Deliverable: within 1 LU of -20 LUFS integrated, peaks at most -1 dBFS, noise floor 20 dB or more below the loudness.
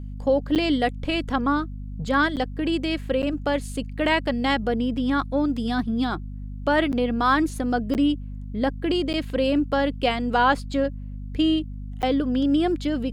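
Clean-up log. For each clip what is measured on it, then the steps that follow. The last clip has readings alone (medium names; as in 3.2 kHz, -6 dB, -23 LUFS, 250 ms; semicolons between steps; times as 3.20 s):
dropouts 7; longest dropout 8.8 ms; hum 50 Hz; highest harmonic 250 Hz; hum level -31 dBFS; loudness -24.0 LUFS; peak level -7.5 dBFS; loudness target -20.0 LUFS
-> interpolate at 0.55/2.36/3.22/6.92/7.94/9.13/12.02 s, 8.8 ms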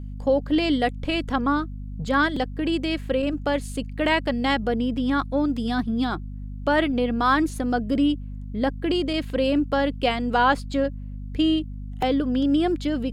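dropouts 0; hum 50 Hz; highest harmonic 250 Hz; hum level -31 dBFS
-> de-hum 50 Hz, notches 5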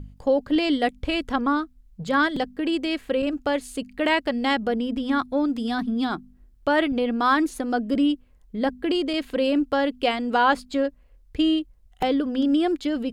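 hum not found; loudness -24.0 LUFS; peak level -8.5 dBFS; loudness target -20.0 LUFS
-> trim +4 dB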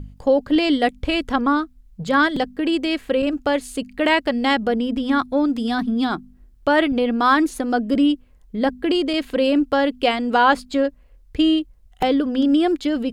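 loudness -20.0 LUFS; peak level -4.5 dBFS; noise floor -51 dBFS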